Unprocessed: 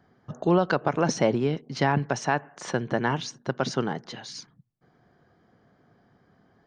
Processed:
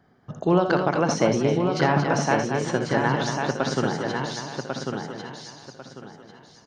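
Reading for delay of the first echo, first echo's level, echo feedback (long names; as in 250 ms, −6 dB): 62 ms, −10.0 dB, repeats not evenly spaced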